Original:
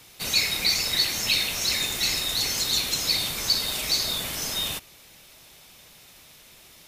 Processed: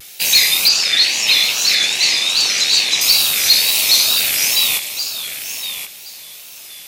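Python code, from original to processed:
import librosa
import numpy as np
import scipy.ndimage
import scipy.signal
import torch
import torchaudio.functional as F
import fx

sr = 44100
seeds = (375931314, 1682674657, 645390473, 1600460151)

y = fx.rattle_buzz(x, sr, strikes_db=-50.0, level_db=-20.0)
y = fx.high_shelf(y, sr, hz=3100.0, db=-6.5)
y = fx.filter_lfo_notch(y, sr, shape='saw_up', hz=1.2, low_hz=940.0, high_hz=2200.0, q=2.3)
y = fx.tilt_eq(y, sr, slope=4.0)
y = np.clip(10.0 ** (13.5 / 20.0) * y, -1.0, 1.0) / 10.0 ** (13.5 / 20.0)
y = fx.bandpass_edges(y, sr, low_hz=130.0, high_hz=5900.0, at=(0.68, 3.01))
y = fx.echo_feedback(y, sr, ms=1071, feedback_pct=18, wet_db=-10.0)
y = fx.wow_flutter(y, sr, seeds[0], rate_hz=2.1, depth_cents=100.0)
y = F.gain(torch.from_numpy(y), 8.0).numpy()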